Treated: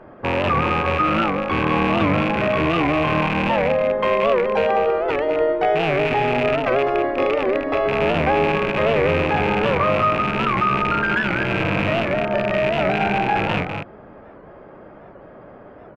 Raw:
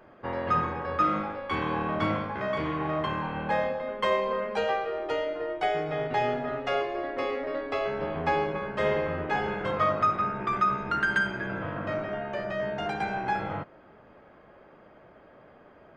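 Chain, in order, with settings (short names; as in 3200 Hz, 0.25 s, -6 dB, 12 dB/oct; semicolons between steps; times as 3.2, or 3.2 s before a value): rattling part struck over -39 dBFS, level -17 dBFS; in parallel at -1 dB: negative-ratio compressor -29 dBFS; on the sum: LPF 1100 Hz 6 dB/oct; echo 0.197 s -6 dB; record warp 78 rpm, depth 160 cents; gain +5.5 dB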